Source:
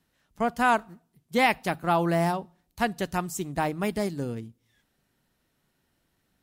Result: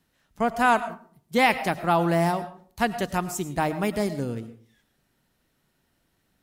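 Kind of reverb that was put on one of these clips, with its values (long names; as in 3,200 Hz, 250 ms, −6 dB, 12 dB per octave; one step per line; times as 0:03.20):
comb and all-pass reverb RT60 0.48 s, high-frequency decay 0.5×, pre-delay 65 ms, DRR 12.5 dB
level +2 dB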